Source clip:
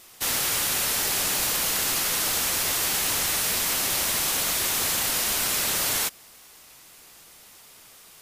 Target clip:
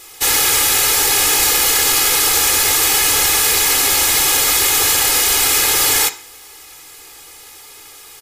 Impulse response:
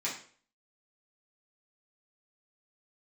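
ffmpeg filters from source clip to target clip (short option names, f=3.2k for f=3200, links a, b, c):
-filter_complex "[0:a]aecho=1:1:2.4:0.79,asplit=2[a][b];[1:a]atrim=start_sample=2205[c];[b][c]afir=irnorm=-1:irlink=0,volume=-11.5dB[d];[a][d]amix=inputs=2:normalize=0,volume=7dB"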